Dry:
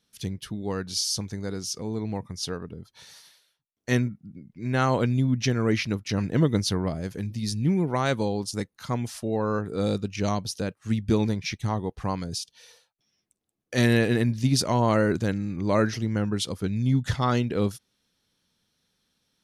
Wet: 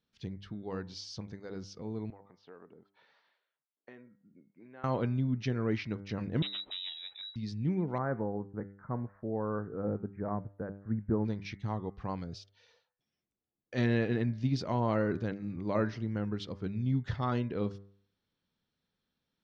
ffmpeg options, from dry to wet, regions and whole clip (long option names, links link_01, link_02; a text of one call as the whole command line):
ffmpeg -i in.wav -filter_complex "[0:a]asettb=1/sr,asplit=3[link_01][link_02][link_03];[link_01]atrim=end=2.104[link_04];[link_02]atrim=start=2.1:end=4.84,asetpts=PTS-STARTPTS,afade=type=in:duration=0.004:curve=qsin,afade=type=out:start_time=2.736:duration=0.004:curve=qsin,acompressor=threshold=-34dB:ratio=10:attack=3.2:release=140:knee=1:detection=peak,highpass=350,lowpass=2300[link_05];[link_03]atrim=start=4.836[link_06];[link_04][link_05]acrossfade=duration=0.004:curve1=hsin:curve2=qsin[link_07];[link_07][link_06]acrossfade=duration=0.004:curve1=qsin:curve2=hsin,asettb=1/sr,asplit=3[link_08][link_09][link_10];[link_08]atrim=end=6.424[link_11];[link_09]atrim=start=6.42:end=7.36,asetpts=PTS-STARTPTS,afade=type=in:duration=0.004:curve=qsin,afade=type=out:start_time=0.936:duration=0.004:curve=qsin,deesser=0.85,aeval=exprs='0.119*(abs(mod(val(0)/0.119+3,4)-2)-1)':channel_layout=same,lowpass=frequency=3400:width_type=q:width=0.5098,lowpass=frequency=3400:width_type=q:width=0.6013,lowpass=frequency=3400:width_type=q:width=0.9,lowpass=frequency=3400:width_type=q:width=2.563,afreqshift=-4000[link_12];[link_10]atrim=start=7.356[link_13];[link_11][link_12]acrossfade=duration=0.004:curve1=hsin:curve2=qsin[link_14];[link_14][link_13]acrossfade=duration=0.004:curve1=qsin:curve2=hsin,asettb=1/sr,asplit=3[link_15][link_16][link_17];[link_15]atrim=end=7.984[link_18];[link_16]atrim=start=7.98:end=11.25,asetpts=PTS-STARTPTS,afade=type=in:duration=0.004:curve=qsin,afade=type=out:start_time=3.266:duration=0.004:curve=qsin,asuperstop=centerf=4900:order=12:qfactor=0.51,acrossover=split=3300[link_19][link_20];[link_20]adelay=90[link_21];[link_19][link_21]amix=inputs=2:normalize=0,atrim=end_sample=144207[link_22];[link_17]atrim=start=11.246[link_23];[link_18][link_22]acrossfade=duration=0.004:curve1=hsin:curve2=qsin[link_24];[link_24][link_23]acrossfade=duration=0.004:curve1=qsin:curve2=hsin,lowpass=frequency=5300:width=0.5412,lowpass=frequency=5300:width=1.3066,highshelf=frequency=3400:gain=-10.5,bandreject=frequency=99.18:width_type=h:width=4,bandreject=frequency=198.36:width_type=h:width=4,bandreject=frequency=297.54:width_type=h:width=4,bandreject=frequency=396.72:width_type=h:width=4,bandreject=frequency=495.9:width_type=h:width=4,bandreject=frequency=595.08:width_type=h:width=4,bandreject=frequency=694.26:width_type=h:width=4,bandreject=frequency=793.44:width_type=h:width=4,bandreject=frequency=892.62:width_type=h:width=4,bandreject=frequency=991.8:width_type=h:width=4,bandreject=frequency=1090.98:width_type=h:width=4,bandreject=frequency=1190.16:width_type=h:width=4,bandreject=frequency=1289.34:width_type=h:width=4,bandreject=frequency=1388.52:width_type=h:width=4,bandreject=frequency=1487.7:width_type=h:width=4,bandreject=frequency=1586.88:width_type=h:width=4,bandreject=frequency=1686.06:width_type=h:width=4,bandreject=frequency=1785.24:width_type=h:width=4,bandreject=frequency=1884.42:width_type=h:width=4,bandreject=frequency=1983.6:width_type=h:width=4,bandreject=frequency=2082.78:width_type=h:width=4,bandreject=frequency=2181.96:width_type=h:width=4,volume=-7.5dB" out.wav